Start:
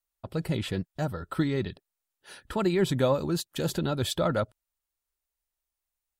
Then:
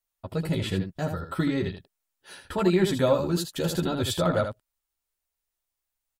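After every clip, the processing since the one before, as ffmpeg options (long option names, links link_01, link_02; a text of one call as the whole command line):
ffmpeg -i in.wav -af "aecho=1:1:11|80:0.668|0.473" out.wav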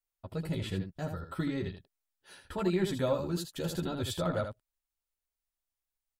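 ffmpeg -i in.wav -af "lowshelf=frequency=78:gain=6,volume=-8dB" out.wav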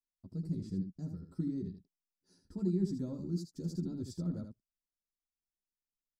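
ffmpeg -i in.wav -af "firequalizer=gain_entry='entry(110,0);entry(190,11);entry(340,4);entry(550,-13);entry(3100,-27);entry(4900,3);entry(11000,-12)':delay=0.05:min_phase=1,volume=-9dB" out.wav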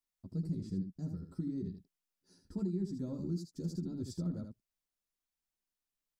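ffmpeg -i in.wav -af "alimiter=level_in=6dB:limit=-24dB:level=0:latency=1:release=428,volume=-6dB,volume=2.5dB" out.wav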